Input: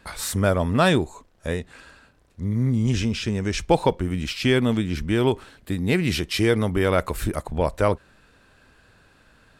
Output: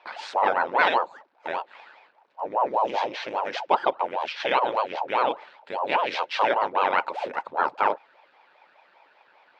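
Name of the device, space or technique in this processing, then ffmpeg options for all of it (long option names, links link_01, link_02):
voice changer toy: -af "aeval=exprs='val(0)*sin(2*PI*480*n/s+480*0.85/5*sin(2*PI*5*n/s))':channel_layout=same,highpass=530,equalizer=frequency=550:width_type=q:width=4:gain=5,equalizer=frequency=890:width_type=q:width=4:gain=9,equalizer=frequency=1500:width_type=q:width=4:gain=5,equalizer=frequency=2500:width_type=q:width=4:gain=4,lowpass=frequency=4400:width=0.5412,lowpass=frequency=4400:width=1.3066,volume=-1.5dB"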